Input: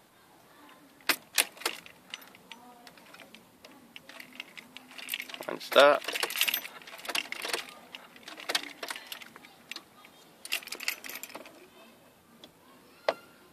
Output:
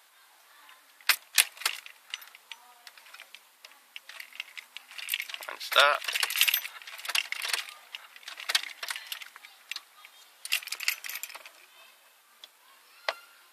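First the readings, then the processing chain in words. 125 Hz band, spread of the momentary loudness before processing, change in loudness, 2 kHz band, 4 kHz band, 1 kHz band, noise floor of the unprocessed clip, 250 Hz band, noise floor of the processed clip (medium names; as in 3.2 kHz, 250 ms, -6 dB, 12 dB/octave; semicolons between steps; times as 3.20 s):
no reading, 20 LU, +1.0 dB, +3.5 dB, +4.0 dB, 0.0 dB, -59 dBFS, under -15 dB, -60 dBFS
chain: high-pass 1.2 kHz 12 dB/octave; trim +4 dB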